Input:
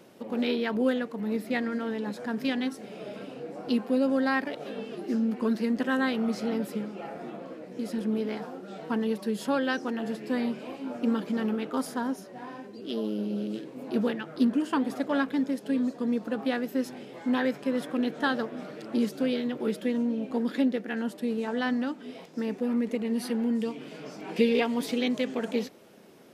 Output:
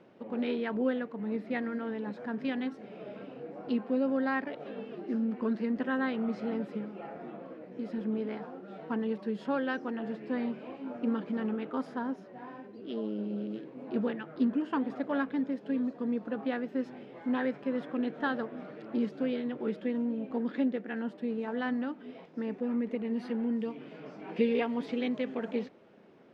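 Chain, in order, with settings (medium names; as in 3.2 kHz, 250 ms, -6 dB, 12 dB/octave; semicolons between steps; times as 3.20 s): low-pass 2.5 kHz 12 dB/octave; trim -4 dB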